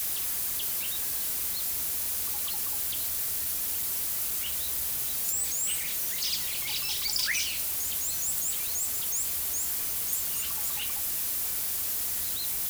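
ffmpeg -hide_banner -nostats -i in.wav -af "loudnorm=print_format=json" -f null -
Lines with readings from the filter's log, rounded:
"input_i" : "-27.4",
"input_tp" : "-13.9",
"input_lra" : "0.7",
"input_thresh" : "-37.4",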